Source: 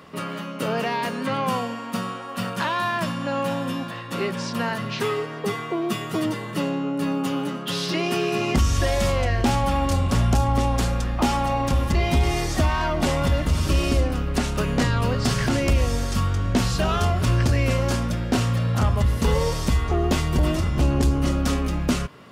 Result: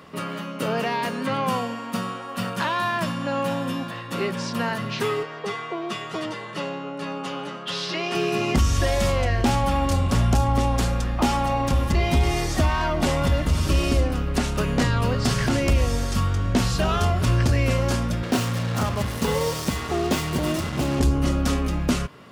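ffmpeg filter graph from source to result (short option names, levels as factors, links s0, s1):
-filter_complex "[0:a]asettb=1/sr,asplit=3[s0][s1][s2];[s0]atrim=end=5.234[s3];[s1]atrim=start=5.23:end=8.15,asetpts=PTS-STARTPTS,afade=t=in:d=0.004:c=qsin,afade=t=out:st=2.916:d=0.004:c=qsin,highpass=180,lowpass=6200,equalizer=f=260:w=1.5:g=-10[s4];[s2]atrim=start=8.146[s5];[s3][s4]acrossfade=d=0.004:c1=hsin:c2=qsin[s6];[s6][s5]acrossfade=d=0.004:c1=qsin:c2=hsin,asettb=1/sr,asplit=3[s7][s8][s9];[s7]atrim=end=18.234[s10];[s8]atrim=start=18.23:end=21,asetpts=PTS-STARTPTS,afade=t=in:d=0.004:c=qsin,afade=t=out:st=2.766:d=0.004:c=qsin,highpass=130,acrusher=bits=4:mix=0:aa=0.5[s11];[s9]atrim=start=20.996[s12];[s10][s11]acrossfade=d=0.004:c1=hsin:c2=qsin[s13];[s13][s12]acrossfade=d=0.004:c1=qsin:c2=hsin"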